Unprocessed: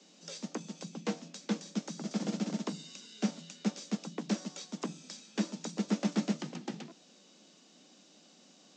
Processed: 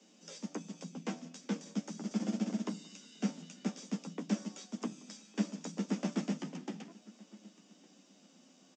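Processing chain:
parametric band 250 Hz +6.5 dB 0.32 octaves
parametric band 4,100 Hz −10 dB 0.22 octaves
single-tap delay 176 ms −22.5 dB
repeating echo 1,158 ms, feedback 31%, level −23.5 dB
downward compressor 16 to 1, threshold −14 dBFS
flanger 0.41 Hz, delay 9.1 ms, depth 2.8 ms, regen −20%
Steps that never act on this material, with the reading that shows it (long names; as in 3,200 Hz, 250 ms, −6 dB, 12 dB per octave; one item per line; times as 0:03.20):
downward compressor, threshold −14 dBFS: peak of its input −16.5 dBFS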